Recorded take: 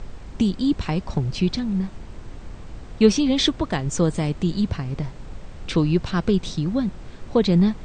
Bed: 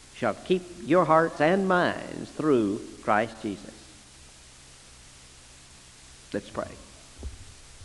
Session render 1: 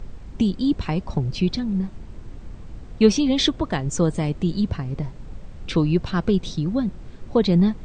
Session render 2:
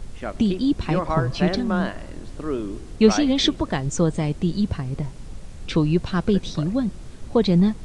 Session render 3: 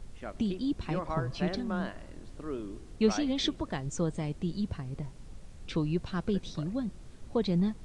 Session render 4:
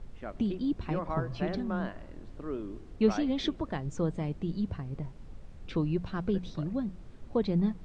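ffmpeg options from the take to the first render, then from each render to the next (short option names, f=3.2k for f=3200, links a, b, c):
-af "afftdn=nr=6:nf=-39"
-filter_complex "[1:a]volume=-4.5dB[a];[0:a][a]amix=inputs=2:normalize=0"
-af "volume=-10.5dB"
-af "aemphasis=mode=reproduction:type=75fm,bandreject=f=60:t=h:w=6,bandreject=f=120:t=h:w=6,bandreject=f=180:t=h:w=6"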